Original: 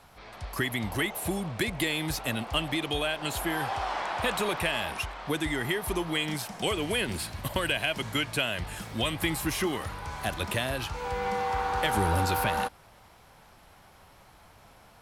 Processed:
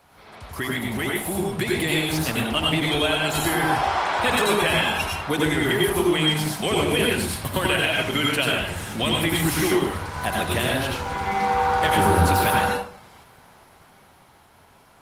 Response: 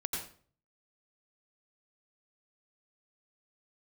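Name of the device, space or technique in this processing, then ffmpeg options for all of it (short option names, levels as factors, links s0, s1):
far-field microphone of a smart speaker: -filter_complex "[1:a]atrim=start_sample=2205[s0];[0:a][s0]afir=irnorm=-1:irlink=0,highpass=f=96:p=1,dynaudnorm=f=160:g=21:m=1.68,volume=1.19" -ar 48000 -c:a libopus -b:a 20k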